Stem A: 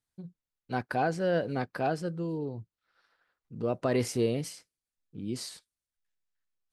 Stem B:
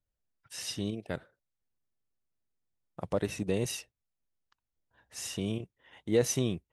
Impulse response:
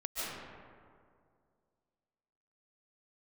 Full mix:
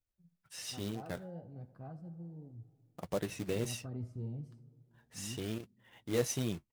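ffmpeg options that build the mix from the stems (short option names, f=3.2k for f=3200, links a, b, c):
-filter_complex "[0:a]asubboost=boost=11:cutoff=150,afwtdn=0.0355,volume=-16.5dB,asplit=3[a][b][c];[b]volume=-21.5dB[d];[c]volume=-15dB[e];[1:a]acrusher=bits=3:mode=log:mix=0:aa=0.000001,volume=-1dB[f];[2:a]atrim=start_sample=2205[g];[d][g]afir=irnorm=-1:irlink=0[h];[e]aecho=0:1:76:1[i];[a][f][h][i]amix=inputs=4:normalize=0,flanger=delay=2.3:depth=9.1:regen=-53:speed=0.37:shape=triangular"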